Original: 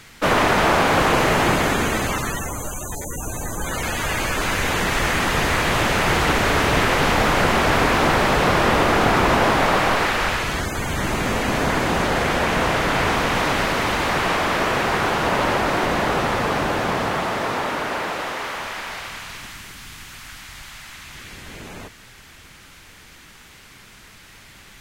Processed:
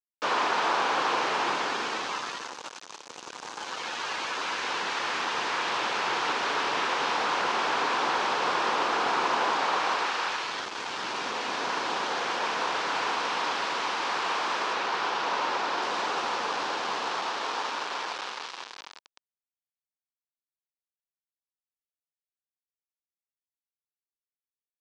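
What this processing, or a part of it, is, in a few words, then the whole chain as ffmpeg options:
hand-held game console: -filter_complex "[0:a]acrusher=bits=3:mix=0:aa=0.000001,highpass=470,equalizer=f=620:t=q:w=4:g=-6,equalizer=f=970:t=q:w=4:g=4,equalizer=f=2000:t=q:w=4:g=-5,lowpass=f=5500:w=0.5412,lowpass=f=5500:w=1.3066,asettb=1/sr,asplit=3[s0][s1][s2];[s0]atrim=end=14.734[s3];[s1]atrim=start=14.73:end=15.82,asetpts=PTS-STARTPTS,afade=t=in:d=0.004:c=qsin,afade=t=out:st=1.086:d=0.004:c=qsin,acrossover=split=6300[s4][s5];[s5]acompressor=threshold=0.00447:ratio=4:attack=1:release=60[s6];[s4][s6]amix=inputs=2:normalize=0[s7];[s2]atrim=start=15.816[s8];[s3][s7]acrossfade=d=0.004:c1=hsin:c2=qsin[s9];[s9][s8]acrossfade=d=0.004:c1=qsin:c2=hsin,volume=0.422"

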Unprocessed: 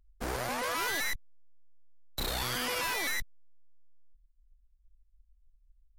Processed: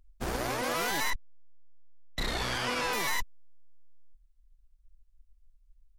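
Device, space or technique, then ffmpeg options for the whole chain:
octave pedal: -filter_complex "[0:a]asettb=1/sr,asplit=3[s0][s1][s2];[s0]atrim=end=1.104[s3];[s1]atrim=start=1.1:end=2.93,asetpts=PTS-STARTPTS,afade=t=in:d=0.004:c=qsin,afade=t=out:st=1.826:d=0.004:c=qsin,lowpass=7600[s4];[s2]atrim=start=2.926[s5];[s3][s4]acrossfade=d=0.004:c1=hsin:c2=qsin[s6];[s6][s5]acrossfade=d=0.004:c1=qsin:c2=hsin,asplit=2[s7][s8];[s8]asetrate=22050,aresample=44100,atempo=2,volume=0.794[s9];[s7][s9]amix=inputs=2:normalize=0"

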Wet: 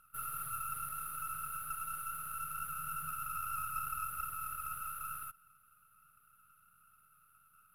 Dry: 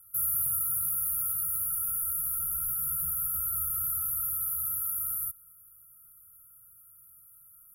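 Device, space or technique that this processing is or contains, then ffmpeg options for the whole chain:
crystal radio: -af "highpass=360,lowpass=3100,aeval=exprs='if(lt(val(0),0),0.447*val(0),val(0))':c=same,volume=5.31"

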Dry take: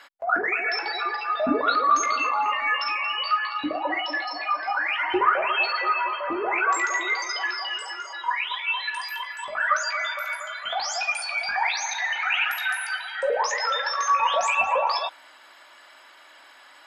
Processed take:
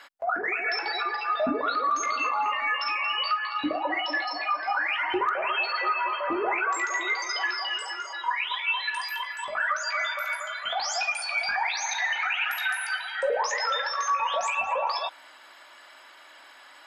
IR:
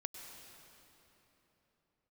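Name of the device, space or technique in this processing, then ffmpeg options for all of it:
clipper into limiter: -af "asoftclip=type=hard:threshold=0.316,alimiter=limit=0.133:level=0:latency=1:release=269"

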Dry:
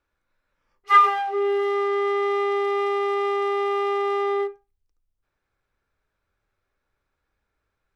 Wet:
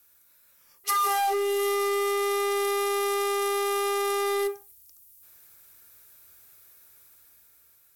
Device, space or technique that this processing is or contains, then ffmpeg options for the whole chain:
FM broadcast chain: -filter_complex "[0:a]highpass=68,dynaudnorm=f=540:g=5:m=2.11,acrossover=split=1600|3800[s0][s1][s2];[s0]acompressor=threshold=0.0891:ratio=4[s3];[s1]acompressor=threshold=0.00501:ratio=4[s4];[s2]acompressor=threshold=0.00355:ratio=4[s5];[s3][s4][s5]amix=inputs=3:normalize=0,aemphasis=mode=production:type=75fm,alimiter=limit=0.0708:level=0:latency=1:release=31,asoftclip=type=hard:threshold=0.0531,lowpass=f=15000:w=0.5412,lowpass=f=15000:w=1.3066,aemphasis=mode=production:type=75fm,volume=1.58"

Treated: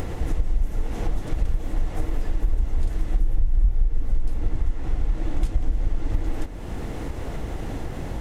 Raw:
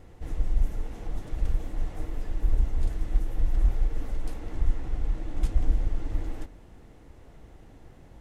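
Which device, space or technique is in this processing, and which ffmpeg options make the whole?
upward and downward compression: -filter_complex "[0:a]asettb=1/sr,asplit=3[s0][s1][s2];[s0]atrim=end=3.194[s3];[s1]atrim=start=3.19:end=4.56,asetpts=PTS-STARTPTS,afade=t=in:d=0.004:c=qsin,afade=t=out:st=1.366:d=0.004:c=qsin,lowshelf=f=190:g=11[s4];[s2]atrim=start=4.556[s5];[s3][s4]acrossfade=d=0.004:c1=hsin:c2=qsin[s6];[s6][s5]acrossfade=d=0.004:c1=qsin:c2=hsin,acompressor=mode=upward:threshold=0.0794:ratio=2.5,acompressor=threshold=0.0794:ratio=6,volume=2.11"

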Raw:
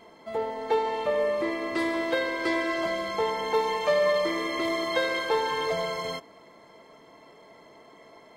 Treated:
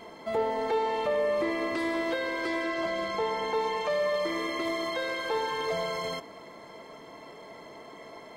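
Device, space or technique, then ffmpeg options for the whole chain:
de-esser from a sidechain: -filter_complex "[0:a]asplit=2[s0][s1];[s1]highpass=f=4900:p=1,apad=whole_len=369039[s2];[s0][s2]sidechaincompress=threshold=0.00447:ratio=4:attack=1.8:release=25,asettb=1/sr,asplit=3[s3][s4][s5];[s3]atrim=end=2.644[s6];[s4]atrim=start=2.64:end=3.9,asetpts=PTS-STARTPTS,afade=t=in:d=0.004:c=qsin,afade=t=out:st=1.256:d=0.004:c=qsin,highshelf=f=10000:g=-9.5[s7];[s5]atrim=start=3.896[s8];[s6][s7]acrossfade=d=0.004:c1=hsin:c2=qsin[s9];[s9][s8]acrossfade=d=0.004:c1=qsin:c2=hsin,volume=1.88"

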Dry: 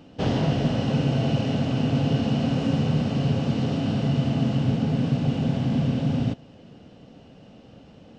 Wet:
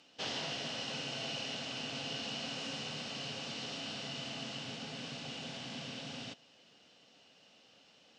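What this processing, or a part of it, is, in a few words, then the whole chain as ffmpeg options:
piezo pickup straight into a mixer: -af "lowpass=6000,aderivative,volume=2"

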